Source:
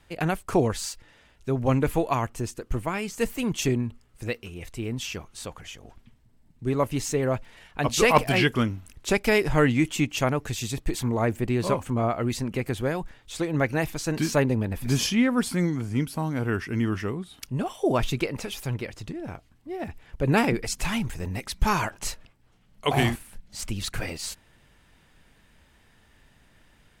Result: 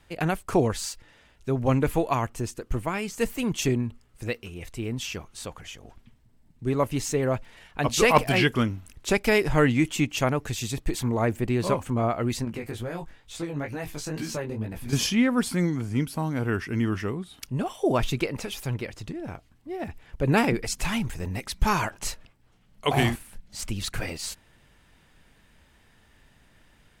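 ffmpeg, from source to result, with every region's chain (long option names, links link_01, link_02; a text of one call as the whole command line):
ffmpeg -i in.wav -filter_complex "[0:a]asettb=1/sr,asplit=3[link_01][link_02][link_03];[link_01]atrim=end=12.454[link_04];[link_02]atrim=start=12.45:end=14.93,asetpts=PTS-STARTPTS,afade=type=in:duration=0.004:curve=qsin,afade=type=out:start_time=2.476:duration=0.004:curve=qsin,asplit=2[link_05][link_06];[link_06]adelay=18,volume=-13dB[link_07];[link_05][link_07]amix=inputs=2:normalize=0,atrim=end_sample=109368,acompressor=threshold=-24dB:ratio=4:attack=3.2:release=140:knee=1:detection=peak,flanger=delay=16.5:depth=4.6:speed=2.2[link_08];[link_03]atrim=start=14.926[link_09];[link_04][link_08]acrossfade=duration=0.004:curve1=hsin:curve2=qsin[link_10];[link_10][link_09]acrossfade=duration=0.004:curve1=qsin:curve2=hsin" out.wav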